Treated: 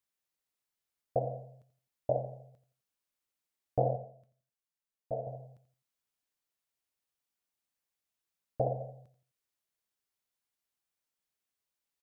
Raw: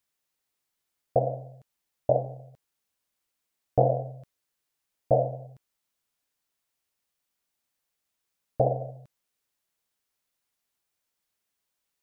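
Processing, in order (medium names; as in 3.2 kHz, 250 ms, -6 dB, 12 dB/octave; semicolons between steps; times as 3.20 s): 3.96–5.27 s: feedback comb 220 Hz, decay 0.2 s, harmonics all, mix 70%; feedback delay 86 ms, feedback 34%, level -13.5 dB; trim -7.5 dB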